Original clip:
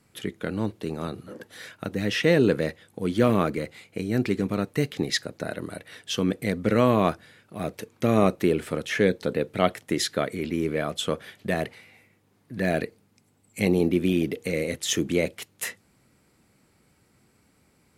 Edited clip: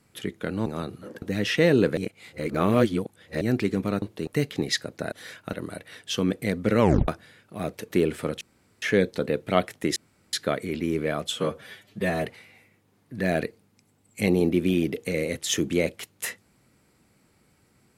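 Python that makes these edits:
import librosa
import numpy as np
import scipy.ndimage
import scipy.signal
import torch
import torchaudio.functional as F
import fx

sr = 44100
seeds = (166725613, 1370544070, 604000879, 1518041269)

y = fx.edit(x, sr, fx.move(start_s=0.66, length_s=0.25, to_s=4.68),
    fx.move(start_s=1.47, length_s=0.41, to_s=5.53),
    fx.reverse_span(start_s=2.63, length_s=1.44),
    fx.tape_stop(start_s=6.8, length_s=0.28),
    fx.cut(start_s=7.9, length_s=0.48),
    fx.insert_room_tone(at_s=8.89, length_s=0.41),
    fx.insert_room_tone(at_s=10.03, length_s=0.37),
    fx.stretch_span(start_s=11.02, length_s=0.62, factor=1.5), tone=tone)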